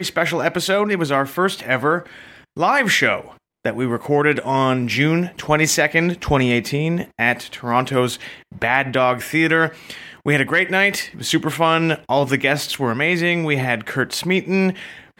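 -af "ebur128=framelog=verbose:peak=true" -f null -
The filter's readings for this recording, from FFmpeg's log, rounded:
Integrated loudness:
  I:         -18.6 LUFS
  Threshold: -28.9 LUFS
Loudness range:
  LRA:         1.6 LU
  Threshold: -38.7 LUFS
  LRA low:   -19.6 LUFS
  LRA high:  -18.0 LUFS
True peak:
  Peak:       -1.7 dBFS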